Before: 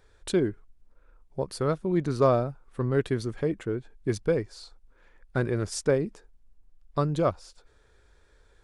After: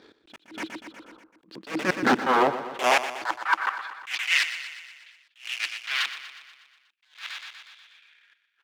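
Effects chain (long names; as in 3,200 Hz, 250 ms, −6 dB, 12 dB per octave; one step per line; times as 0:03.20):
low-pass filter 6,500 Hz 12 dB per octave
parametric band 320 Hz +13.5 dB 0.21 octaves
brickwall limiter −16.5 dBFS, peak gain reduction 7 dB
wrap-around overflow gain 25 dB
auto-filter low-pass saw down 0.79 Hz 920–4,400 Hz
leveller curve on the samples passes 1
gain into a clipping stage and back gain 25 dB
high-pass filter sweep 230 Hz → 2,800 Hz, 0:01.93–0:04.41
gate pattern "x.x.xxxxxx..x.x" 126 BPM −60 dB
on a send: repeating echo 121 ms, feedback 60%, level −12.5 dB
on the sum: level that may rise only so fast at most 190 dB per second
level +7.5 dB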